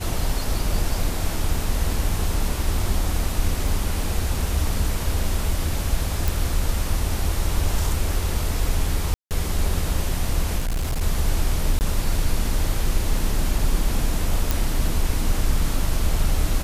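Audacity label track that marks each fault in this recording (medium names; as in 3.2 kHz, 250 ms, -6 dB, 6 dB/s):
3.680000	3.680000	dropout 2.2 ms
6.280000	6.280000	pop
9.140000	9.310000	dropout 168 ms
10.580000	11.020000	clipped -20 dBFS
11.790000	11.810000	dropout 19 ms
14.510000	14.510000	pop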